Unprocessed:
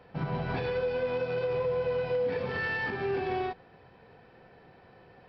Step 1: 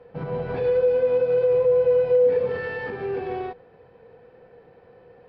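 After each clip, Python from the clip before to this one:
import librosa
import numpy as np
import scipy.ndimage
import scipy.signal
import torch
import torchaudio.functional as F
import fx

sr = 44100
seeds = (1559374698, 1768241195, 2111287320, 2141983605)

y = fx.lowpass(x, sr, hz=2300.0, slope=6)
y = fx.peak_eq(y, sr, hz=480.0, db=14.0, octaves=0.26)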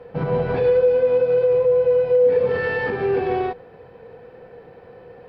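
y = fx.rider(x, sr, range_db=3, speed_s=0.5)
y = y * librosa.db_to_amplitude(4.5)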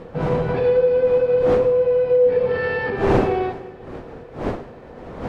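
y = fx.dmg_wind(x, sr, seeds[0], corner_hz=550.0, level_db=-29.0)
y = fx.rev_schroeder(y, sr, rt60_s=1.9, comb_ms=38, drr_db=13.0)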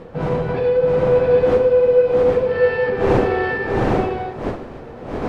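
y = fx.echo_multitap(x, sr, ms=(671, 766, 805), db=(-3.5, -6.0, -4.5))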